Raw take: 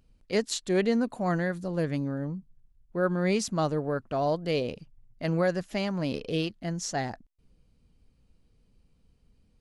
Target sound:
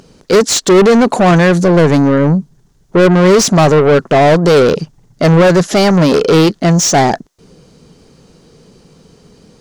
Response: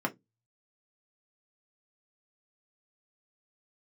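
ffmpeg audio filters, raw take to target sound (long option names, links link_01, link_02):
-filter_complex "[0:a]equalizer=frequency=160:width_type=o:width=0.67:gain=9,equalizer=frequency=400:width_type=o:width=0.67:gain=8,equalizer=frequency=2500:width_type=o:width=0.67:gain=-7,equalizer=frequency=6300:width_type=o:width=0.67:gain=8,acontrast=47,asplit=2[link_01][link_02];[link_02]highpass=frequency=720:poles=1,volume=28dB,asoftclip=type=tanh:threshold=-4.5dB[link_03];[link_01][link_03]amix=inputs=2:normalize=0,lowpass=frequency=3800:poles=1,volume=-6dB,volume=3.5dB"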